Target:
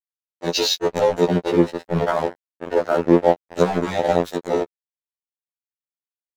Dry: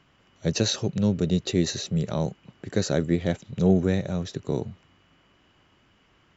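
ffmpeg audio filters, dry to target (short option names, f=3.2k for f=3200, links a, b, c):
-filter_complex "[0:a]asettb=1/sr,asplit=3[a][b][c];[a]atrim=end=1.274[d];[b]atrim=start=1.27:end=3.37,asetpts=PTS-STARTPTS,afade=t=in:d=0.004:c=qsin,afade=t=out:st=2.096:d=0.004:c=qsin,lowpass=1.6k[e];[c]atrim=start=3.366[f];[d][e]acrossfade=d=0.004:c1=hsin:c2=qsin[g];[g][f]acrossfade=d=0.004:c1=qsin:c2=hsin,afwtdn=0.0282,highpass=770,acompressor=threshold=-36dB:ratio=10,aeval=exprs='sgn(val(0))*max(abs(val(0))-0.00266,0)':c=same,alimiter=level_in=36dB:limit=-1dB:release=50:level=0:latency=1,afftfilt=real='re*2*eq(mod(b,4),0)':imag='im*2*eq(mod(b,4),0)':win_size=2048:overlap=0.75,volume=-3.5dB"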